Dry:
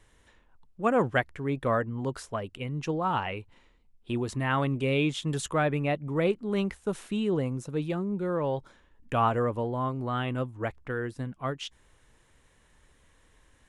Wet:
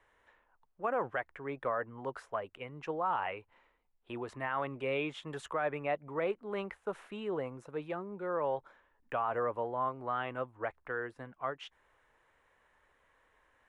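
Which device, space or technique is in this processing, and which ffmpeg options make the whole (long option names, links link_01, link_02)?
DJ mixer with the lows and highs turned down: -filter_complex "[0:a]acrossover=split=470 2300:gain=0.141 1 0.126[link_01][link_02][link_03];[link_01][link_02][link_03]amix=inputs=3:normalize=0,alimiter=limit=-23dB:level=0:latency=1:release=53"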